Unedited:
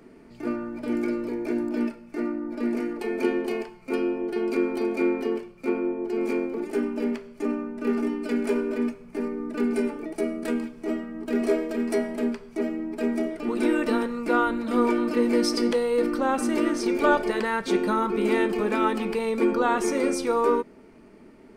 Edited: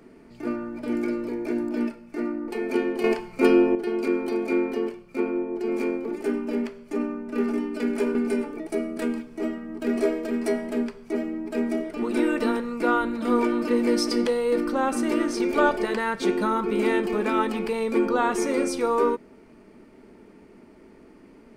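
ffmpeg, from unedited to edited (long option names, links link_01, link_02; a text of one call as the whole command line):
ffmpeg -i in.wav -filter_complex "[0:a]asplit=5[link_01][link_02][link_03][link_04][link_05];[link_01]atrim=end=2.482[link_06];[link_02]atrim=start=2.968:end=3.532[link_07];[link_03]atrim=start=3.528:end=4.242,asetpts=PTS-STARTPTS,volume=8.5dB[link_08];[link_04]atrim=start=4.238:end=8.642[link_09];[link_05]atrim=start=9.608[link_10];[link_06][link_07]acrossfade=duration=0.004:curve1=hsin:curve2=hsin[link_11];[link_11][link_08]acrossfade=duration=0.004:curve1=hsin:curve2=hsin[link_12];[link_12][link_09]acrossfade=duration=0.004:curve1=hsin:curve2=hsin[link_13];[link_13][link_10]acrossfade=duration=0.004:curve1=hsin:curve2=hsin" out.wav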